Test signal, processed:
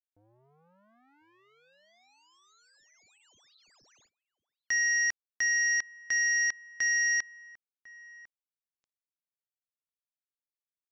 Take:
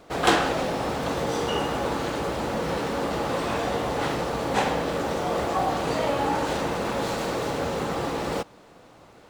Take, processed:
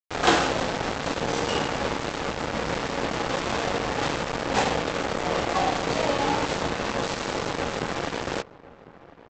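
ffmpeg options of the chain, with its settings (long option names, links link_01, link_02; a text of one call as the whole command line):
ffmpeg -i in.wav -filter_complex "[0:a]aresample=16000,acrusher=bits=3:mix=0:aa=0.5,aresample=44100,asplit=2[link_01][link_02];[link_02]adelay=1050,volume=-18dB,highshelf=frequency=4000:gain=-23.6[link_03];[link_01][link_03]amix=inputs=2:normalize=0" out.wav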